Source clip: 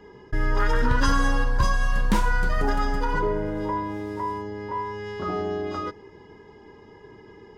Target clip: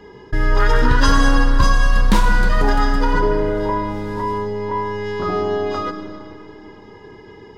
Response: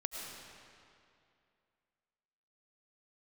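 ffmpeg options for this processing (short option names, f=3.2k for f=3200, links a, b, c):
-filter_complex "[0:a]equalizer=f=4k:w=2.1:g=4.5,asplit=2[a][b];[1:a]atrim=start_sample=2205[c];[b][c]afir=irnorm=-1:irlink=0,volume=-1.5dB[d];[a][d]amix=inputs=2:normalize=0,volume=1.5dB"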